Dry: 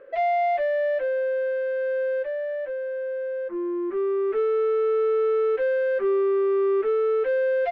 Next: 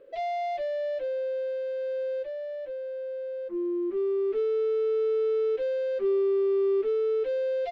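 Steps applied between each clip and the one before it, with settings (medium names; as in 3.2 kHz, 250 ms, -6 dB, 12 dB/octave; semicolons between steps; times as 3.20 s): FFT filter 350 Hz 0 dB, 1.6 kHz -14 dB, 3.9 kHz +5 dB; trim -1.5 dB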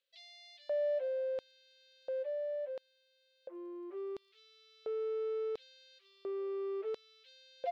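LFO high-pass square 0.72 Hz 640–4000 Hz; trim -8.5 dB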